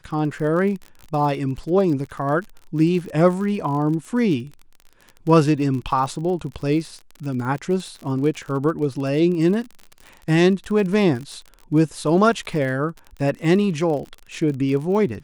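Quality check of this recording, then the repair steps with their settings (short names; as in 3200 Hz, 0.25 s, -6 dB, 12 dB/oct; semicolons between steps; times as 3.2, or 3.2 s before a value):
crackle 44/s -29 dBFS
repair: de-click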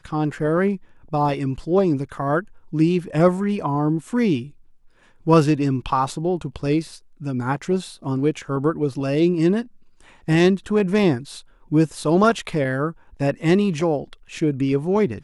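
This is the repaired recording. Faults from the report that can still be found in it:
none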